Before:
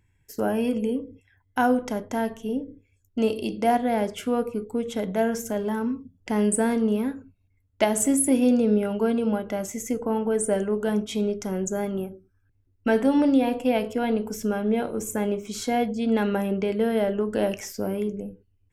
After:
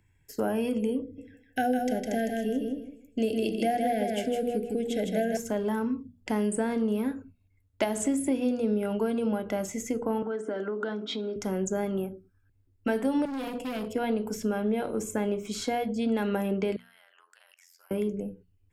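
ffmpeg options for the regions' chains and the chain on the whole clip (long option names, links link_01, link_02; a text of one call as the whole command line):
ffmpeg -i in.wav -filter_complex "[0:a]asettb=1/sr,asplit=3[link_01][link_02][link_03];[link_01]atrim=end=1.024[link_04];[link_02]atrim=start=1.02:end=5.37,asetpts=PTS-STARTPTS,afade=type=in:duration=0.004:curve=qsin,afade=type=out:start_time=4.346:duration=0.004:curve=qsin,asuperstop=centerf=1100:order=20:qfactor=1.6,aecho=1:1:157|314|471|628:0.596|0.155|0.0403|0.0105,atrim=end_sample=191835[link_05];[link_03]atrim=start=5.366[link_06];[link_04][link_05]acrossfade=duration=0.004:curve1=hsin:curve2=qsin[link_07];[link_07][link_06]acrossfade=duration=0.004:curve1=qsin:curve2=hsin,asettb=1/sr,asplit=3[link_08][link_09][link_10];[link_08]atrim=end=10.224[link_11];[link_09]atrim=start=10.22:end=11.36,asetpts=PTS-STARTPTS,afade=type=in:duration=0.004:curve=qsin,afade=type=out:start_time=1.136:duration=0.004:curve=qsin,acompressor=threshold=-28dB:ratio=12:attack=3.2:release=140:knee=1:detection=peak,highpass=frequency=220:width=0.5412,highpass=frequency=220:width=1.3066,equalizer=frequency=300:width_type=q:width=4:gain=9,equalizer=frequency=1400:width_type=q:width=4:gain=10,equalizer=frequency=2600:width_type=q:width=4:gain=-7,equalizer=frequency=3800:width_type=q:width=4:gain=7,lowpass=frequency=5000:width=0.5412,lowpass=frequency=5000:width=1.3066[link_12];[link_10]atrim=start=11.356[link_13];[link_11][link_12]acrossfade=duration=0.004:curve1=hsin:curve2=qsin[link_14];[link_14][link_13]acrossfade=duration=0.004:curve1=qsin:curve2=hsin,asettb=1/sr,asplit=3[link_15][link_16][link_17];[link_15]atrim=end=13.254[link_18];[link_16]atrim=start=13.25:end=13.95,asetpts=PTS-STARTPTS,afade=type=in:duration=0.004:curve=qsin,afade=type=out:start_time=0.696:duration=0.004:curve=qsin,acrossover=split=380|1100|2600[link_19][link_20][link_21][link_22];[link_19]acompressor=threshold=-26dB:ratio=3[link_23];[link_20]acompressor=threshold=-35dB:ratio=3[link_24];[link_21]acompressor=threshold=-54dB:ratio=3[link_25];[link_22]acompressor=threshold=-42dB:ratio=3[link_26];[link_23][link_24][link_25][link_26]amix=inputs=4:normalize=0,asoftclip=type=hard:threshold=-30dB[link_27];[link_17]atrim=start=13.946[link_28];[link_18][link_27]acrossfade=duration=0.004:curve1=hsin:curve2=qsin[link_29];[link_29][link_28]acrossfade=duration=0.004:curve1=qsin:curve2=hsin,asettb=1/sr,asplit=3[link_30][link_31][link_32];[link_30]atrim=end=16.764[link_33];[link_31]atrim=start=16.76:end=17.91,asetpts=PTS-STARTPTS,afade=type=in:duration=0.004:curve=qsin,afade=type=out:start_time=1.146:duration=0.004:curve=qsin,highpass=frequency=1200:width=0.5412,highpass=frequency=1200:width=1.3066,tremolo=f=87:d=0.889,acompressor=threshold=-55dB:ratio=8:attack=3.2:release=140:knee=1:detection=peak[link_34];[link_32]atrim=start=17.906[link_35];[link_33][link_34]acrossfade=duration=0.004:curve1=hsin:curve2=qsin[link_36];[link_36][link_35]acrossfade=duration=0.004:curve1=qsin:curve2=hsin,bandreject=frequency=5900:width=16,acrossover=split=110|7200[link_37][link_38][link_39];[link_37]acompressor=threshold=-53dB:ratio=4[link_40];[link_38]acompressor=threshold=-24dB:ratio=4[link_41];[link_39]acompressor=threshold=-49dB:ratio=4[link_42];[link_40][link_41][link_42]amix=inputs=3:normalize=0,bandreject=frequency=60:width_type=h:width=6,bandreject=frequency=120:width_type=h:width=6,bandreject=frequency=180:width_type=h:width=6,bandreject=frequency=240:width_type=h:width=6" out.wav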